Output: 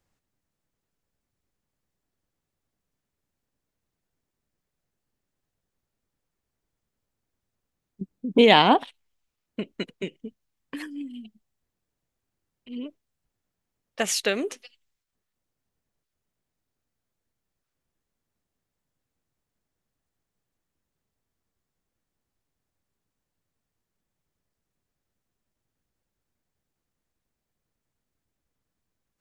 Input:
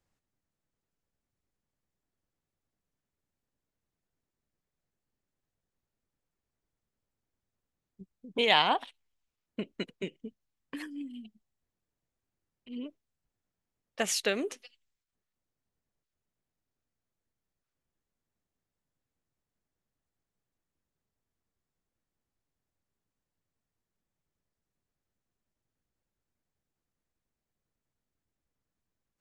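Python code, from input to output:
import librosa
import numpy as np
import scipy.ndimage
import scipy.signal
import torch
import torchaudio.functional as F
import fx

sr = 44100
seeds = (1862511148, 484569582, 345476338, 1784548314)

y = fx.peak_eq(x, sr, hz=250.0, db=13.5, octaves=2.2, at=(8.01, 8.83))
y = F.gain(torch.from_numpy(y), 4.5).numpy()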